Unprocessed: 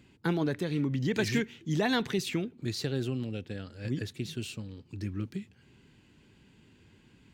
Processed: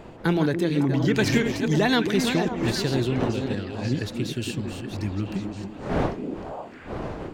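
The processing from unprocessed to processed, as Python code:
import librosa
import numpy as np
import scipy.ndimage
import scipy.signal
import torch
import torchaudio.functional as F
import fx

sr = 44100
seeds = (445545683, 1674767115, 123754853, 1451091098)

y = fx.reverse_delay(x, sr, ms=355, wet_db=-8)
y = fx.dmg_wind(y, sr, seeds[0], corner_hz=580.0, level_db=-42.0)
y = fx.echo_stepped(y, sr, ms=276, hz=290.0, octaves=1.4, feedback_pct=70, wet_db=-3)
y = y * 10.0 ** (6.5 / 20.0)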